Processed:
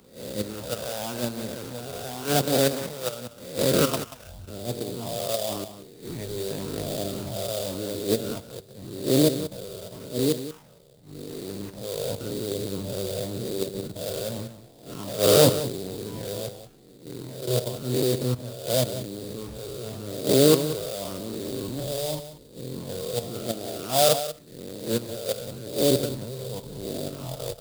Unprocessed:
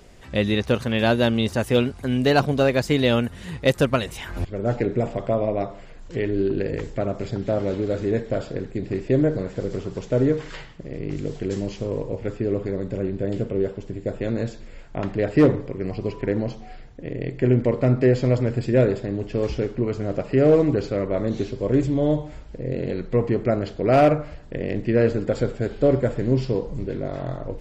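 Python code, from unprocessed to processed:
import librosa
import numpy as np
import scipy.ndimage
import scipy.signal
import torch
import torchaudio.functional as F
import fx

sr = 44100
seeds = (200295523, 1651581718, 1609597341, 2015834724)

y = fx.spec_swells(x, sr, rise_s=1.49)
y = fx.phaser_stages(y, sr, stages=8, low_hz=260.0, high_hz=1300.0, hz=0.9, feedback_pct=5)
y = fx.band_shelf(y, sr, hz=2300.0, db=-13.0, octaves=1.1)
y = fx.level_steps(y, sr, step_db=10)
y = fx.sample_hold(y, sr, seeds[0], rate_hz=4200.0, jitter_pct=20)
y = fx.rider(y, sr, range_db=4, speed_s=2.0)
y = fx.transient(y, sr, attack_db=-10, sustain_db=-6)
y = fx.highpass(y, sr, hz=160.0, slope=6)
y = fx.high_shelf(y, sr, hz=4200.0, db=8.5)
y = y + 10.0 ** (-9.0 / 20.0) * np.pad(y, (int(185 * sr / 1000.0), 0))[:len(y)]
y = fx.band_widen(y, sr, depth_pct=70)
y = F.gain(torch.from_numpy(y), -1.0).numpy()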